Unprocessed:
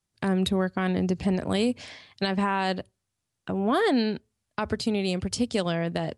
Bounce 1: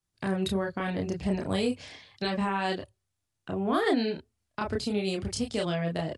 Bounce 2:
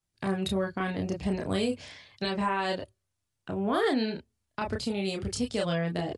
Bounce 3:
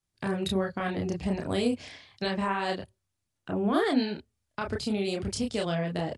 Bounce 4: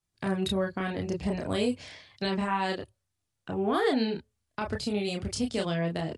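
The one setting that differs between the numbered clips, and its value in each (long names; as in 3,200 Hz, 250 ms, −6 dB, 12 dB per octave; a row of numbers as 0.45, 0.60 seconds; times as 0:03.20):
multi-voice chorus, speed: 0.94, 0.3, 2.4, 0.57 Hertz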